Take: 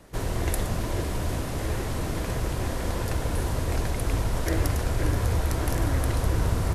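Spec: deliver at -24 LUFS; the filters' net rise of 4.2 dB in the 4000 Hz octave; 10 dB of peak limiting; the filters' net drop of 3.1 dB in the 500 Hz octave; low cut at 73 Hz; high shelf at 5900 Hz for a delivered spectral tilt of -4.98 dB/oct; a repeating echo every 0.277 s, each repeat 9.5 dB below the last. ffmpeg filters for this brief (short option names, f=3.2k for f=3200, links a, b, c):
-af "highpass=73,equalizer=f=500:t=o:g=-4,equalizer=f=4k:t=o:g=7.5,highshelf=f=5.9k:g=-6,alimiter=limit=-22dB:level=0:latency=1,aecho=1:1:277|554|831|1108:0.335|0.111|0.0365|0.012,volume=7.5dB"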